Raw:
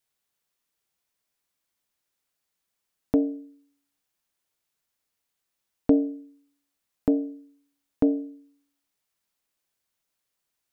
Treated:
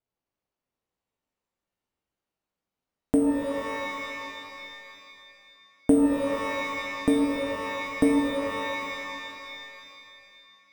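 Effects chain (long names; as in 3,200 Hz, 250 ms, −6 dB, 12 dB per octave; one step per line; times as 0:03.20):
running median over 25 samples
decimation without filtering 5×
reverb with rising layers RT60 2.7 s, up +12 semitones, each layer −2 dB, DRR 3 dB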